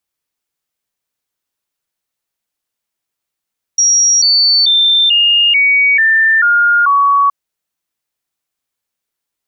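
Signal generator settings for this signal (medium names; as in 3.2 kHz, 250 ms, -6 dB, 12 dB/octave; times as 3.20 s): stepped sine 5.67 kHz down, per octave 3, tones 8, 0.44 s, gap 0.00 s -7 dBFS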